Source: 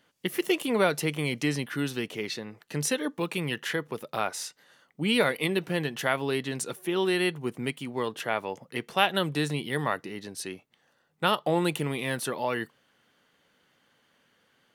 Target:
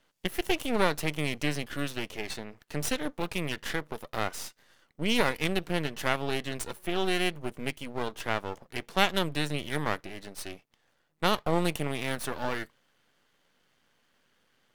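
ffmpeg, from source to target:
ffmpeg -i in.wav -af "aeval=exprs='max(val(0),0)':channel_layout=same,volume=1dB" out.wav

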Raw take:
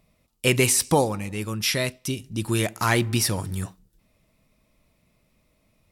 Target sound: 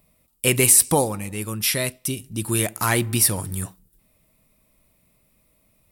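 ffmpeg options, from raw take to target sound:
ffmpeg -i in.wav -af "aexciter=amount=4.7:drive=1.1:freq=8200" out.wav

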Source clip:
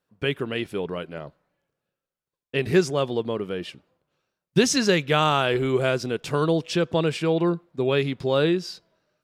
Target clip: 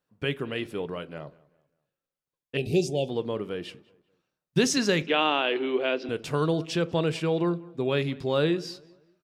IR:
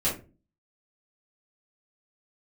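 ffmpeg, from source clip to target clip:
-filter_complex "[0:a]asettb=1/sr,asplit=3[link_01][link_02][link_03];[link_01]atrim=end=2.574[link_04];[link_02]atrim=start=2.57:end=3.09,asetpts=PTS-STARTPTS,afade=type=in:duration=0.004:curve=qsin,afade=type=out:start_time=0.516:duration=0.004:curve=qsin,asuperstop=centerf=1400:order=12:qfactor=0.88[link_05];[link_03]atrim=start=3.086[link_06];[link_04][link_05]acrossfade=duration=0.004:curve1=hsin:curve2=qsin[link_07];[link_07][link_06]acrossfade=duration=0.004:curve1=qsin:curve2=hsin,asettb=1/sr,asplit=3[link_08][link_09][link_10];[link_08]atrim=end=5.024[link_11];[link_09]atrim=start=5.02:end=6.09,asetpts=PTS-STARTPTS,afade=type=in:duration=0.004:curve=qsin,afade=type=out:start_time=1.066:duration=0.004:curve=qsin,highpass=frequency=280:width=0.5412,highpass=frequency=280:width=1.3066,equalizer=frequency=290:width_type=q:width=4:gain=6,equalizer=frequency=1300:width_type=q:width=4:gain=-4,equalizer=frequency=2800:width_type=q:width=4:gain=6,lowpass=frequency=4100:width=0.5412,lowpass=frequency=4100:width=1.3066[link_12];[link_10]atrim=start=6.086[link_13];[link_11][link_12]acrossfade=duration=0.004:curve1=hsin:curve2=qsin[link_14];[link_14][link_13]acrossfade=duration=0.004:curve1=qsin:curve2=hsin,asplit=2[link_15][link_16];[link_16]adelay=194,lowpass=frequency=2700:poles=1,volume=-22dB,asplit=2[link_17][link_18];[link_18]adelay=194,lowpass=frequency=2700:poles=1,volume=0.37,asplit=2[link_19][link_20];[link_20]adelay=194,lowpass=frequency=2700:poles=1,volume=0.37[link_21];[link_15][link_17][link_19][link_21]amix=inputs=4:normalize=0,asplit=2[link_22][link_23];[1:a]atrim=start_sample=2205,afade=type=out:start_time=0.17:duration=0.01,atrim=end_sample=7938[link_24];[link_23][link_24]afir=irnorm=-1:irlink=0,volume=-24dB[link_25];[link_22][link_25]amix=inputs=2:normalize=0,volume=-4dB"

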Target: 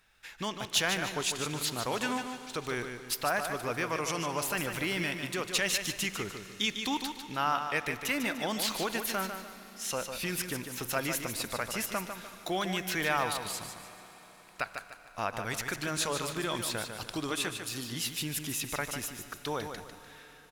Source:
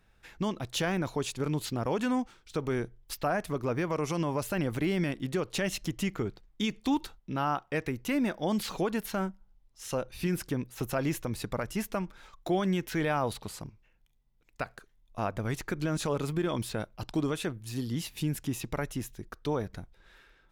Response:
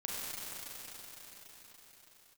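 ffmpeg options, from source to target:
-filter_complex "[0:a]tiltshelf=frequency=760:gain=-8,aecho=1:1:149|298|447|596:0.422|0.152|0.0547|0.0197,asplit=2[link_01][link_02];[1:a]atrim=start_sample=2205[link_03];[link_02][link_03]afir=irnorm=-1:irlink=0,volume=-16.5dB[link_04];[link_01][link_04]amix=inputs=2:normalize=0,volume=-2dB"

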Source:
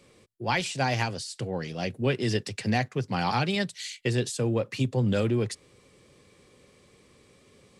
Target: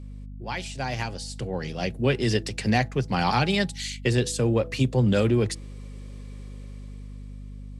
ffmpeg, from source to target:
ffmpeg -i in.wav -af "dynaudnorm=framelen=280:gausssize=9:maxgain=12.5dB,aeval=exprs='val(0)+0.0282*(sin(2*PI*50*n/s)+sin(2*PI*2*50*n/s)/2+sin(2*PI*3*50*n/s)/3+sin(2*PI*4*50*n/s)/4+sin(2*PI*5*50*n/s)/5)':channel_layout=same,bandreject=frequency=164.2:width_type=h:width=4,bandreject=frequency=328.4:width_type=h:width=4,bandreject=frequency=492.6:width_type=h:width=4,bandreject=frequency=656.8:width_type=h:width=4,bandreject=frequency=821:width_type=h:width=4,volume=-6.5dB" out.wav

